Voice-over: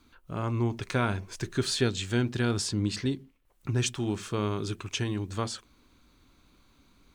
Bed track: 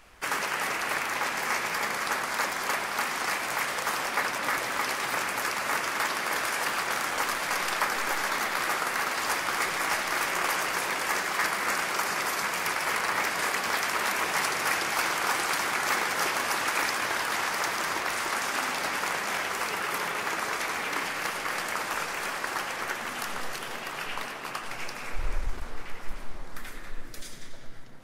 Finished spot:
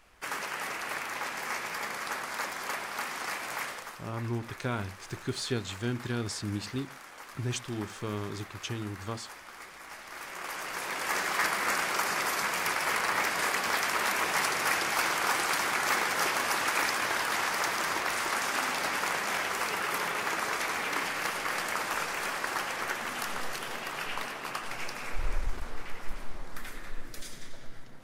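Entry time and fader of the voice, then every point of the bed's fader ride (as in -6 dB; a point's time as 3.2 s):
3.70 s, -5.5 dB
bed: 3.66 s -6 dB
4.01 s -18.5 dB
9.86 s -18.5 dB
11.24 s -1 dB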